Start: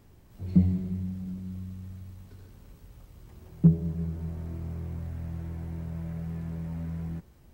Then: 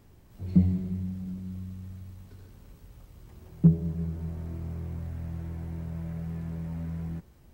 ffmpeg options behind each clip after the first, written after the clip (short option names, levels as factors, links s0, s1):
-af anull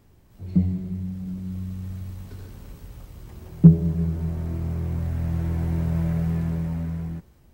-af "dynaudnorm=f=400:g=7:m=4.47"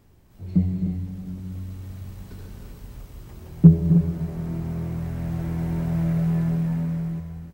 -af "aecho=1:1:262|309:0.299|0.398"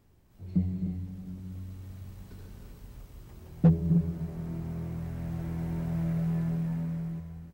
-af "asoftclip=type=hard:threshold=0.422,volume=0.447"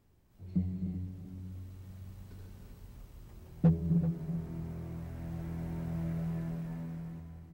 -filter_complex "[0:a]asplit=2[s0][s1];[s1]adelay=384.8,volume=0.316,highshelf=f=4000:g=-8.66[s2];[s0][s2]amix=inputs=2:normalize=0,volume=0.596"